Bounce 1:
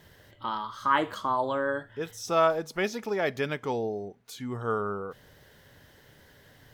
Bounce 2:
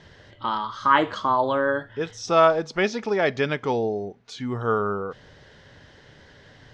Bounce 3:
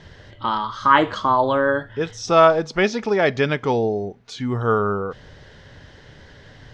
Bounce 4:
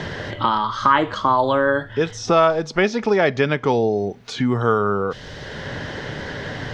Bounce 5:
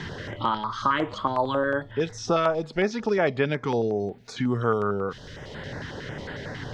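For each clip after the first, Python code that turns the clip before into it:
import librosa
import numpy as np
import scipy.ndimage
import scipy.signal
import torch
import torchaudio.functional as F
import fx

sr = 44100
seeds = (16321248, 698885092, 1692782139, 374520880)

y1 = scipy.signal.sosfilt(scipy.signal.butter(4, 6000.0, 'lowpass', fs=sr, output='sos'), x)
y1 = F.gain(torch.from_numpy(y1), 6.0).numpy()
y2 = fx.low_shelf(y1, sr, hz=89.0, db=8.5)
y2 = F.gain(torch.from_numpy(y2), 3.5).numpy()
y3 = fx.band_squash(y2, sr, depth_pct=70)
y3 = F.gain(torch.from_numpy(y3), 1.0).numpy()
y4 = fx.filter_held_notch(y3, sr, hz=11.0, low_hz=590.0, high_hz=5900.0)
y4 = F.gain(torch.from_numpy(y4), -5.0).numpy()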